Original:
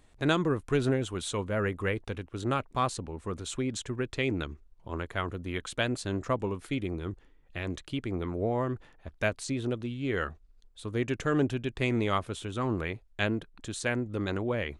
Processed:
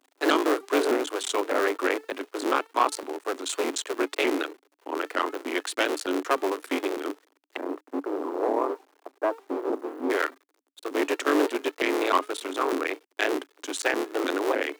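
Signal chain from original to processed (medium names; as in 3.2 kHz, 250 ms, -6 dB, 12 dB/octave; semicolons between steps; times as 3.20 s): cycle switcher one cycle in 3, muted; 7.57–10.10 s: Chebyshev low-pass 1.1 kHz, order 3; de-hum 424.8 Hz, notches 10; waveshaping leveller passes 2; word length cut 10-bit, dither none; rippled Chebyshev high-pass 280 Hz, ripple 3 dB; vibrato with a chosen wave saw up 3.3 Hz, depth 160 cents; trim +3 dB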